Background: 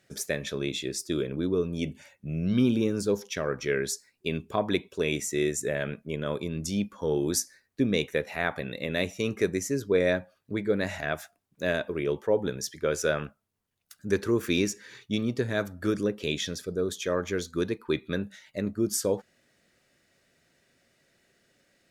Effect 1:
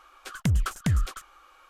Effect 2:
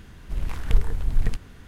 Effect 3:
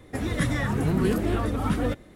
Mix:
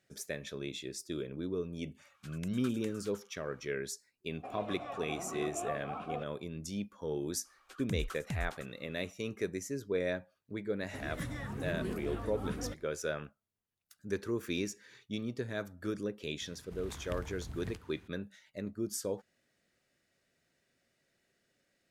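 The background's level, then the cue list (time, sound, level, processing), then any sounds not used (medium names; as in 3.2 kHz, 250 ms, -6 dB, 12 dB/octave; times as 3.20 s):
background -9.5 dB
1.98 s: add 1 -14 dB + high-pass 1.1 kHz
4.30 s: add 3 + vowel filter a
7.44 s: add 1 -13.5 dB, fades 0.02 s
10.80 s: add 3 -14.5 dB
16.41 s: add 2 -11 dB + high-pass 61 Hz 24 dB/octave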